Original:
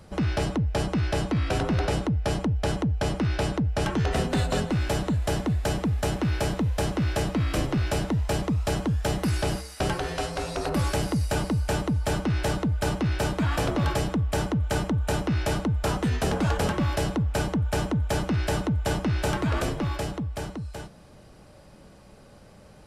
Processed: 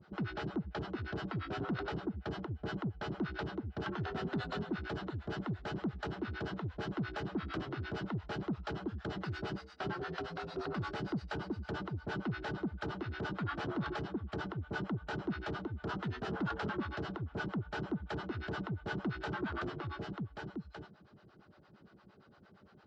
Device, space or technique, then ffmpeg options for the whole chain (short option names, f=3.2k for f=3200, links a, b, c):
guitar amplifier with harmonic tremolo: -filter_complex "[0:a]acrossover=split=520[a][b];[a]aeval=exprs='val(0)*(1-1/2+1/2*cos(2*PI*8.7*n/s))':c=same[c];[b]aeval=exprs='val(0)*(1-1/2-1/2*cos(2*PI*8.7*n/s))':c=same[d];[c][d]amix=inputs=2:normalize=0,asoftclip=type=tanh:threshold=-26dB,highpass=100,equalizer=f=200:t=q:w=4:g=3,equalizer=f=370:t=q:w=4:g=7,equalizer=f=540:t=q:w=4:g=-7,equalizer=f=1.4k:t=q:w=4:g=8,equalizer=f=2.4k:t=q:w=4:g=-5,lowpass=f=4.3k:w=0.5412,lowpass=f=4.3k:w=1.3066,volume=-5.5dB"